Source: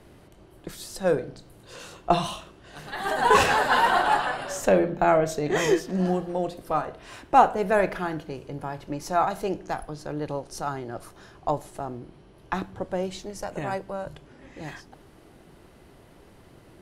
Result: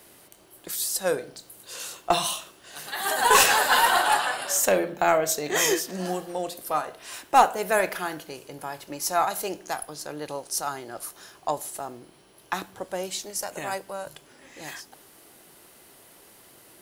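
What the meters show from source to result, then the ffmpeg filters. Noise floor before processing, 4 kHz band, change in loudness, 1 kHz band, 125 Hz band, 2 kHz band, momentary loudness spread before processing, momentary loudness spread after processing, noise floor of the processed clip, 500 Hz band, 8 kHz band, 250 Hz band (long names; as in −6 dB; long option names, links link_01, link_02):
−53 dBFS, +6.0 dB, +0.5 dB, −0.5 dB, −9.5 dB, +2.0 dB, 20 LU, 20 LU, −55 dBFS, −2.5 dB, +12.0 dB, −6.0 dB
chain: -af "aemphasis=mode=production:type=riaa,aeval=exprs='0.631*(cos(1*acos(clip(val(0)/0.631,-1,1)))-cos(1*PI/2))+0.0178*(cos(4*acos(clip(val(0)/0.631,-1,1)))-cos(4*PI/2))+0.0562*(cos(6*acos(clip(val(0)/0.631,-1,1)))-cos(6*PI/2))+0.0282*(cos(8*acos(clip(val(0)/0.631,-1,1)))-cos(8*PI/2))':channel_layout=same"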